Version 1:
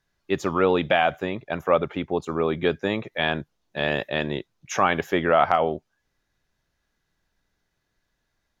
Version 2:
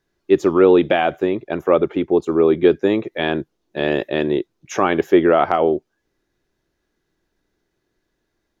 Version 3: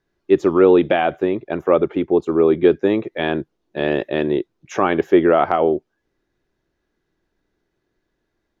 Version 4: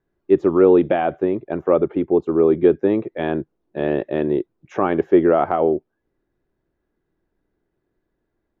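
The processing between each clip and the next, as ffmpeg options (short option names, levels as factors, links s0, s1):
-af "equalizer=f=350:t=o:w=0.92:g=13.5"
-af "lowpass=f=3500:p=1"
-af "lowpass=f=1000:p=1"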